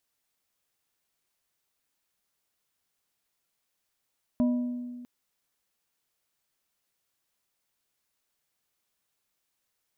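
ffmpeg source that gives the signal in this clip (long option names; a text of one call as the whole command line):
ffmpeg -f lavfi -i "aevalsrc='0.1*pow(10,-3*t/1.84)*sin(2*PI*245*t)+0.0282*pow(10,-3*t/0.969)*sin(2*PI*612.5*t)+0.00794*pow(10,-3*t/0.697)*sin(2*PI*980*t)':duration=0.65:sample_rate=44100" out.wav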